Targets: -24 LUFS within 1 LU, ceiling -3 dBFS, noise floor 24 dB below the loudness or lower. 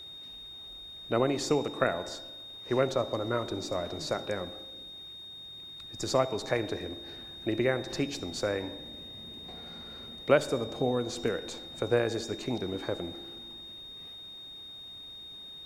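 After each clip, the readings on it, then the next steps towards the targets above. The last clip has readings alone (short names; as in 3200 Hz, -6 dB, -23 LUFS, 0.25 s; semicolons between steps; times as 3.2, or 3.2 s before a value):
steady tone 3700 Hz; tone level -43 dBFS; loudness -33.0 LUFS; peak -9.0 dBFS; loudness target -24.0 LUFS
-> notch 3700 Hz, Q 30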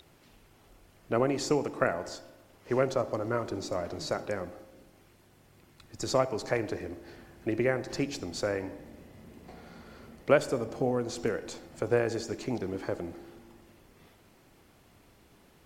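steady tone none; loudness -31.5 LUFS; peak -9.5 dBFS; loudness target -24.0 LUFS
-> gain +7.5 dB; limiter -3 dBFS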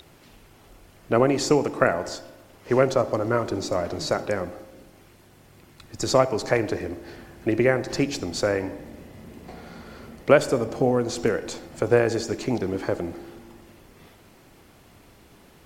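loudness -24.0 LUFS; peak -3.0 dBFS; noise floor -53 dBFS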